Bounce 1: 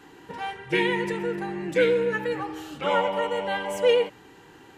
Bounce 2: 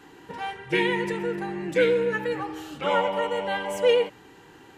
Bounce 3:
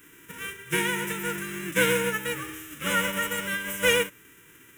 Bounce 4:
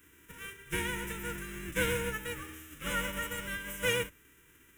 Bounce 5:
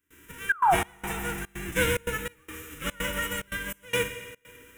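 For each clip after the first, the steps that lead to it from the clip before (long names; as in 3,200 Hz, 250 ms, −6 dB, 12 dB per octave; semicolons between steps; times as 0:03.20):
no processing that can be heard
spectral envelope flattened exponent 0.3; dynamic equaliser 630 Hz, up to +5 dB, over −35 dBFS, Q 1.2; phaser with its sweep stopped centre 1,900 Hz, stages 4
sub-octave generator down 2 octaves, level 0 dB; level −8.5 dB
sound drawn into the spectrogram fall, 0:00.49–0:00.75, 650–1,700 Hz −25 dBFS; convolution reverb RT60 2.1 s, pre-delay 4 ms, DRR 9 dB; gate pattern ".xxxx.xx..xxxx" 145 BPM −24 dB; level +5.5 dB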